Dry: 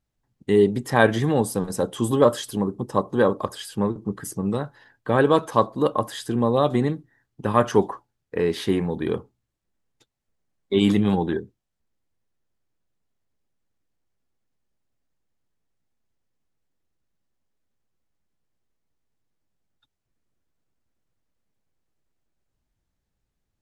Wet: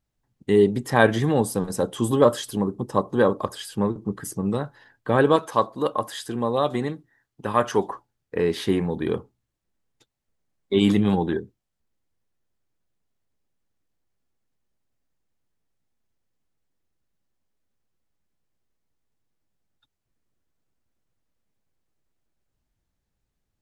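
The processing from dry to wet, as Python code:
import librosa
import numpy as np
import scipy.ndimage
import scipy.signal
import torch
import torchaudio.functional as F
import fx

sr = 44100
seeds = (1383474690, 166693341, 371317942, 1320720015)

y = fx.low_shelf(x, sr, hz=380.0, db=-7.5, at=(5.36, 7.88))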